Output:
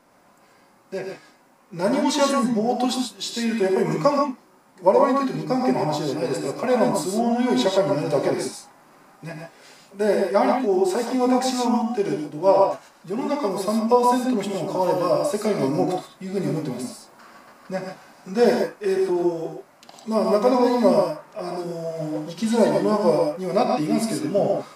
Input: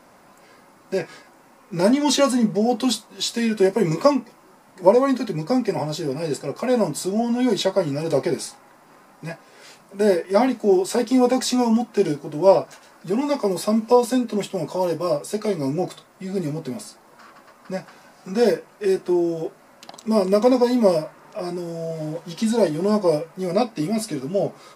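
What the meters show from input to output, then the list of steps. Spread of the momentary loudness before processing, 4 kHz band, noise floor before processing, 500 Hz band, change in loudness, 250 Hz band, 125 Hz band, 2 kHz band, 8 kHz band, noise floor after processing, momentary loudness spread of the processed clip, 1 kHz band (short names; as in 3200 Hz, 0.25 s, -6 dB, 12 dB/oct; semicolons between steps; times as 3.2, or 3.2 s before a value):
15 LU, -2.0 dB, -52 dBFS, -0.5 dB, -0.5 dB, -1.0 dB, -1.5 dB, +0.5 dB, -2.5 dB, -55 dBFS, 14 LU, +3.5 dB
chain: vocal rider within 3 dB 2 s; non-linear reverb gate 0.16 s rising, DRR 2 dB; dynamic EQ 1100 Hz, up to +6 dB, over -31 dBFS, Q 0.75; gain -4.5 dB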